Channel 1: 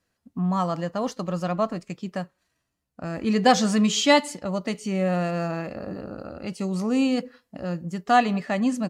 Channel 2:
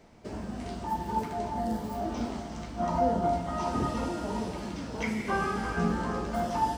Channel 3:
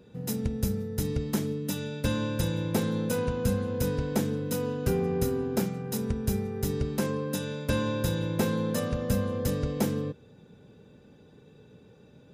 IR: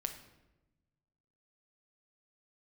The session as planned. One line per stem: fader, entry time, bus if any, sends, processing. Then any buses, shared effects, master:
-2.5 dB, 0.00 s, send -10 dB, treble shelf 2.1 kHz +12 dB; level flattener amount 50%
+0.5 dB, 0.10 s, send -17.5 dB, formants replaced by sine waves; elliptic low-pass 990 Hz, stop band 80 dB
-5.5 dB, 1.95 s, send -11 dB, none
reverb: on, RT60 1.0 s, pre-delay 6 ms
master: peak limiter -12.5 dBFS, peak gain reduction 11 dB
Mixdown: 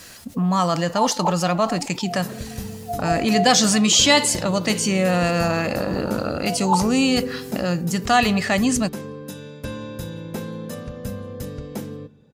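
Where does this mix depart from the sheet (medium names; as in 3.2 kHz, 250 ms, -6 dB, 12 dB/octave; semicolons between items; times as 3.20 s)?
stem 1: send off; master: missing peak limiter -12.5 dBFS, peak gain reduction 11 dB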